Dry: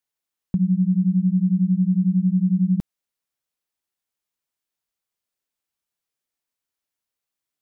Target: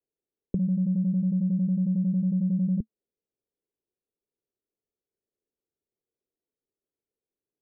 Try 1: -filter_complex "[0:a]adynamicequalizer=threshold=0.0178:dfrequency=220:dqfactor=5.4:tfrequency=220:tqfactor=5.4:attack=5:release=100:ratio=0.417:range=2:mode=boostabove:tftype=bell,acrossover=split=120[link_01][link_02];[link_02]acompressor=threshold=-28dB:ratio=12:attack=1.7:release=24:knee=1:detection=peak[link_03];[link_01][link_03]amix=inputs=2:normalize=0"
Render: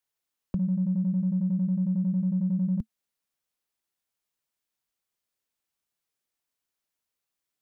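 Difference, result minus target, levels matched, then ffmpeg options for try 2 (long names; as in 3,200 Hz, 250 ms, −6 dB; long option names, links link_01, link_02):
500 Hz band −2.5 dB
-filter_complex "[0:a]adynamicequalizer=threshold=0.0178:dfrequency=220:dqfactor=5.4:tfrequency=220:tqfactor=5.4:attack=5:release=100:ratio=0.417:range=2:mode=boostabove:tftype=bell,acrossover=split=120[link_01][link_02];[link_02]acompressor=threshold=-28dB:ratio=12:attack=1.7:release=24:knee=1:detection=peak,lowpass=frequency=420:width_type=q:width=3.4[link_03];[link_01][link_03]amix=inputs=2:normalize=0"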